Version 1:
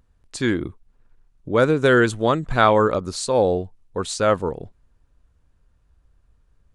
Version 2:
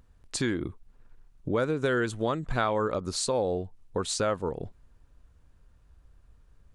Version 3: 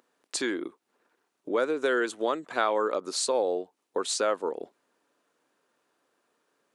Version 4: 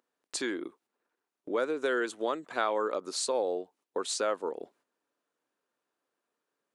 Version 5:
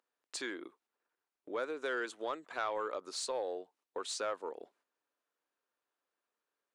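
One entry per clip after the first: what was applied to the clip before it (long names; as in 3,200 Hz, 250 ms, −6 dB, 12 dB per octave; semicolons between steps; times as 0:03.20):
downward compressor 3 to 1, threshold −30 dBFS, peak gain reduction 14.5 dB; level +2 dB
high-pass filter 300 Hz 24 dB per octave; level +1.5 dB
noise gate −59 dBFS, range −8 dB; level −3.5 dB
mid-hump overdrive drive 10 dB, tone 5,700 Hz, clips at −14.5 dBFS; level −9 dB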